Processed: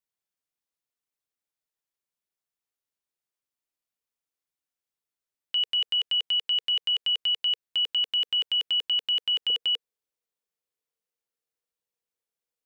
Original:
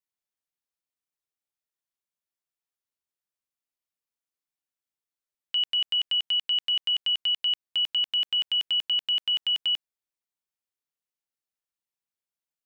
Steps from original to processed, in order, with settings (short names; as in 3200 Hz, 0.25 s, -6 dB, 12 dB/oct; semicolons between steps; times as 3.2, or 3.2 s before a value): bell 470 Hz +3.5 dB 0.35 oct, from 9.5 s +13 dB